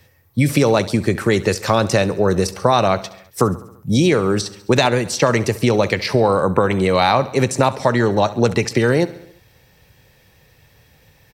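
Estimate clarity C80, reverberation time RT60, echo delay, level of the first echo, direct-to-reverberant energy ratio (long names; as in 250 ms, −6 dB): no reverb audible, no reverb audible, 68 ms, −18.0 dB, no reverb audible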